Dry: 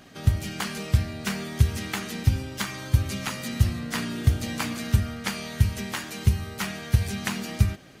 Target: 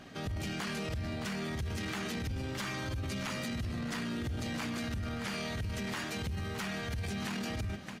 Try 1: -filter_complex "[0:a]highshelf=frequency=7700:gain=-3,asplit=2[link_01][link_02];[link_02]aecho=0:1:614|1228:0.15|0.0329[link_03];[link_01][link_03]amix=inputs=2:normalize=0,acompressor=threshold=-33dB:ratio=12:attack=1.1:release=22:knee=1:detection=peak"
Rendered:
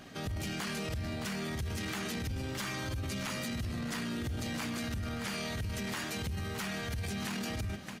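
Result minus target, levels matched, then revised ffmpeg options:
8,000 Hz band +3.0 dB
-filter_complex "[0:a]highshelf=frequency=7700:gain=-11,asplit=2[link_01][link_02];[link_02]aecho=0:1:614|1228:0.15|0.0329[link_03];[link_01][link_03]amix=inputs=2:normalize=0,acompressor=threshold=-33dB:ratio=12:attack=1.1:release=22:knee=1:detection=peak"

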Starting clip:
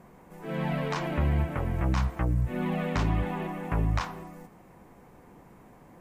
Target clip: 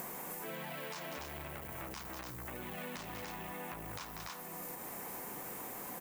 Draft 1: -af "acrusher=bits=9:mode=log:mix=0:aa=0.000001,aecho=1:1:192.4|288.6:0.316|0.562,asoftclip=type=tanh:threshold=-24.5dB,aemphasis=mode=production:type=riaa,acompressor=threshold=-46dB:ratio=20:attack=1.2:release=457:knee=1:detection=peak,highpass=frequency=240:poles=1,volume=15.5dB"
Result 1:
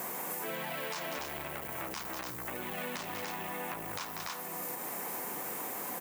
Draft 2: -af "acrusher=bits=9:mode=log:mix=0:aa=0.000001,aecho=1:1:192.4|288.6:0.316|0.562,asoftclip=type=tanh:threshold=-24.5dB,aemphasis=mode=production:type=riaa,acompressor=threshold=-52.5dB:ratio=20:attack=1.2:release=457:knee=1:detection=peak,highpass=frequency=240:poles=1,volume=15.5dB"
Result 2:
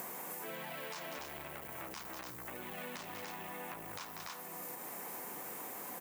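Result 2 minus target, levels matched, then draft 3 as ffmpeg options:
250 Hz band −2.5 dB
-af "acrusher=bits=9:mode=log:mix=0:aa=0.000001,aecho=1:1:192.4|288.6:0.316|0.562,asoftclip=type=tanh:threshold=-24.5dB,aemphasis=mode=production:type=riaa,acompressor=threshold=-52.5dB:ratio=20:attack=1.2:release=457:knee=1:detection=peak,volume=15.5dB"

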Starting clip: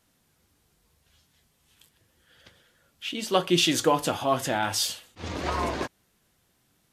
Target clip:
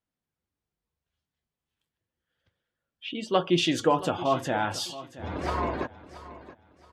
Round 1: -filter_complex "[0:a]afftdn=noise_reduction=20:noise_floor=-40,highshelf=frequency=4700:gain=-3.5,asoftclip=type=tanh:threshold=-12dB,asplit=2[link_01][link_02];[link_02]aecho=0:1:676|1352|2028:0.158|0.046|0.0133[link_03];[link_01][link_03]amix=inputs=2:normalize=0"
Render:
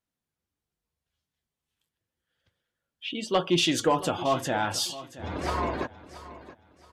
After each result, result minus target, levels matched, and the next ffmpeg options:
soft clipping: distortion +14 dB; 8,000 Hz band +5.5 dB
-filter_complex "[0:a]afftdn=noise_reduction=20:noise_floor=-40,highshelf=frequency=4700:gain=-3.5,asoftclip=type=tanh:threshold=-4dB,asplit=2[link_01][link_02];[link_02]aecho=0:1:676|1352|2028:0.158|0.046|0.0133[link_03];[link_01][link_03]amix=inputs=2:normalize=0"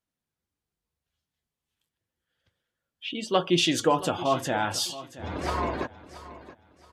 8,000 Hz band +5.0 dB
-filter_complex "[0:a]afftdn=noise_reduction=20:noise_floor=-40,highshelf=frequency=4700:gain=-12,asoftclip=type=tanh:threshold=-4dB,asplit=2[link_01][link_02];[link_02]aecho=0:1:676|1352|2028:0.158|0.046|0.0133[link_03];[link_01][link_03]amix=inputs=2:normalize=0"

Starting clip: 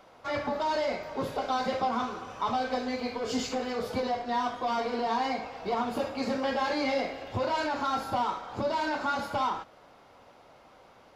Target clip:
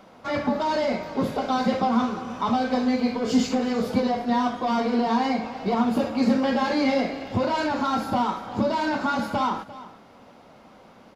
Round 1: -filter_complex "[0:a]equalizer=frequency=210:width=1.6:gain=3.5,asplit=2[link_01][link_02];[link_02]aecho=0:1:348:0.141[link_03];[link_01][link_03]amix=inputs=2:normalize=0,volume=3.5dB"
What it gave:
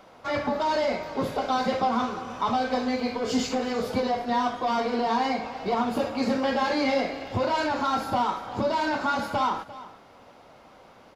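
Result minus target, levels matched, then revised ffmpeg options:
250 Hz band −3.5 dB
-filter_complex "[0:a]equalizer=frequency=210:width=1.6:gain=11.5,asplit=2[link_01][link_02];[link_02]aecho=0:1:348:0.141[link_03];[link_01][link_03]amix=inputs=2:normalize=0,volume=3.5dB"

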